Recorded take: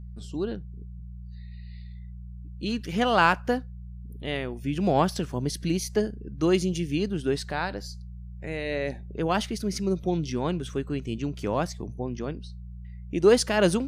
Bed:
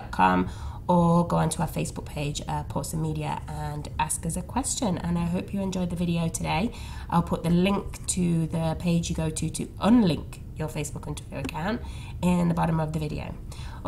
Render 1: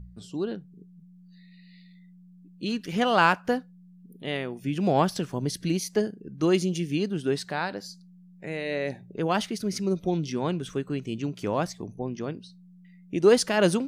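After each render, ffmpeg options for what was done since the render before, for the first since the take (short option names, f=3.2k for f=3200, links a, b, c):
-af "bandreject=f=60:t=h:w=4,bandreject=f=120:t=h:w=4"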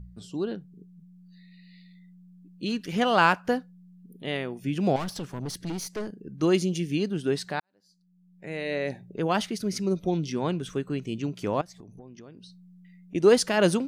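-filter_complex "[0:a]asettb=1/sr,asplit=3[a][b][c];[a]atrim=end=4.964[d];[b]atrim=start=4.96:end=6.12,asetpts=PTS-STARTPTS,afade=t=in:d=0.004:c=qsin,afade=t=out:st=1.156:d=0.004:c=qsin,aeval=exprs='(tanh(28.2*val(0)+0.35)-tanh(0.35))/28.2':c=same[e];[c]atrim=start=6.116[f];[d][e]acrossfade=d=0.004:c1=hsin:c2=qsin[g];[g][f]acrossfade=d=0.004:c1=qsin:c2=hsin,asettb=1/sr,asplit=3[h][i][j];[h]atrim=end=11.614[k];[i]atrim=start=11.61:end=13.15,asetpts=PTS-STARTPTS,afade=t=in:d=0.004:c=qsin,afade=t=out:st=1.536:d=0.004:c=qsin,acompressor=threshold=-43dB:ratio=8:attack=3.2:release=140:knee=1:detection=peak[l];[j]atrim=start=13.146[m];[k][l]acrossfade=d=0.004:c1=hsin:c2=qsin[n];[n][m]acrossfade=d=0.004:c1=qsin:c2=hsin,asplit=2[o][p];[o]atrim=end=7.6,asetpts=PTS-STARTPTS,afade=t=out:st=7.596:d=0.004:c=hsin[q];[p]atrim=start=7.6,asetpts=PTS-STARTPTS,afade=t=in:d=1.02:c=qua[r];[q][r]concat=n=2:v=0:a=1"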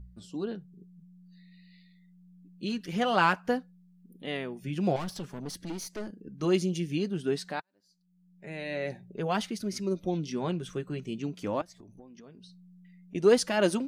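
-af "flanger=delay=3.2:depth=2.5:regen=-42:speed=0.51:shape=sinusoidal"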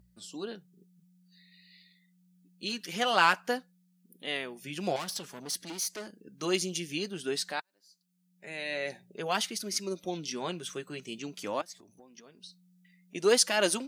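-af "highpass=f=500:p=1,highshelf=f=2.9k:g=10"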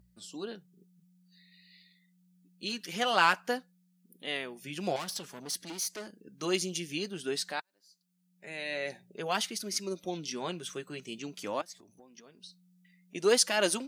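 -af "volume=-1dB"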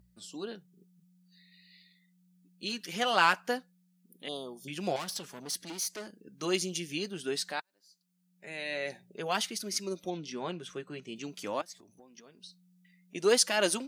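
-filter_complex "[0:a]asettb=1/sr,asplit=3[a][b][c];[a]atrim=end=4.284[d];[b]atrim=start=4.28:end=4.68,asetpts=PTS-STARTPTS,afade=t=in:d=0.004:c=qsin,afade=t=out:st=0.396:d=0.004:c=qsin,asuperstop=centerf=2000:order=12:qfactor=0.97[e];[c]atrim=start=4.676[f];[d][e]acrossfade=d=0.004:c1=hsin:c2=qsin[g];[g][f]acrossfade=d=0.004:c1=qsin:c2=hsin,asettb=1/sr,asplit=3[h][i][j];[h]atrim=end=10.104[k];[i]atrim=start=10.1:end=11.16,asetpts=PTS-STARTPTS,afade=t=in:d=0.004:c=qsin,afade=t=out:st=1.056:d=0.004:c=qsin,lowpass=f=2.6k:p=1[l];[j]atrim=start=11.156[m];[k][l]acrossfade=d=0.004:c1=hsin:c2=qsin[n];[n][m]acrossfade=d=0.004:c1=qsin:c2=hsin"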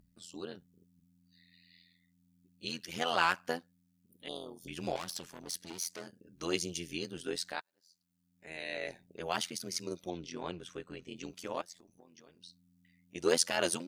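-af "tremolo=f=85:d=0.889"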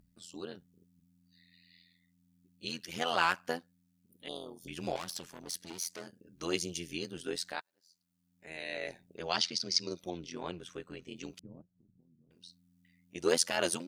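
-filter_complex "[0:a]asettb=1/sr,asplit=3[a][b][c];[a]atrim=end=9.224[d];[b]atrim=start=9.22:end=9.96,asetpts=PTS-STARTPTS,afade=t=in:d=0.004:c=qsin,afade=t=out:st=0.736:d=0.004:c=qsin,lowpass=f=4.9k:t=q:w=3.7[e];[c]atrim=start=9.956[f];[d][e]acrossfade=d=0.004:c1=hsin:c2=qsin[g];[g][f]acrossfade=d=0.004:c1=qsin:c2=hsin,asettb=1/sr,asplit=3[h][i][j];[h]atrim=end=11.394[k];[i]atrim=start=11.39:end=12.31,asetpts=PTS-STARTPTS,afade=t=in:d=0.004:c=qsin,afade=t=out:st=0.916:d=0.004:c=qsin,lowpass=f=160:t=q:w=1.5[l];[j]atrim=start=12.306[m];[k][l]acrossfade=d=0.004:c1=hsin:c2=qsin[n];[n][m]acrossfade=d=0.004:c1=qsin:c2=hsin"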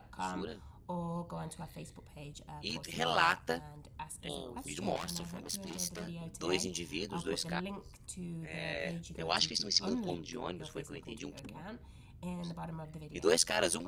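-filter_complex "[1:a]volume=-18.5dB[a];[0:a][a]amix=inputs=2:normalize=0"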